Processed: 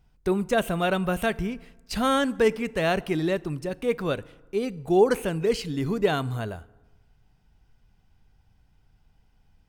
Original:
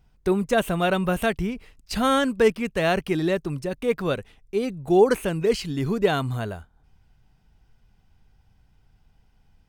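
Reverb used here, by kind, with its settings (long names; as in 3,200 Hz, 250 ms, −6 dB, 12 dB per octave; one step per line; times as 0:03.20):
feedback delay network reverb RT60 1.2 s, low-frequency decay 1×, high-frequency decay 0.6×, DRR 19 dB
level −2 dB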